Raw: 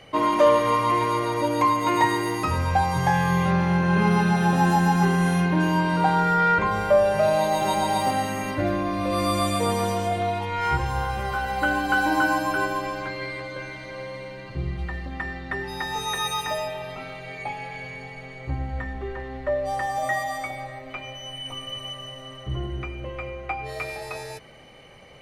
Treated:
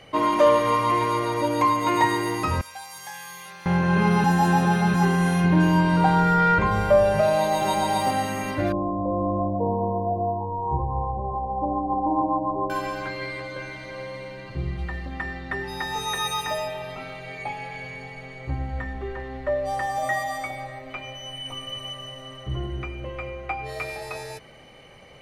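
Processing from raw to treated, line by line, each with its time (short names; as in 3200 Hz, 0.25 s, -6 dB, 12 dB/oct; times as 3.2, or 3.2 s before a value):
2.61–3.66 differentiator
4.24–4.94 reverse
5.44–7.21 low shelf 160 Hz +9.5 dB
8.72–12.7 brick-wall FIR low-pass 1100 Hz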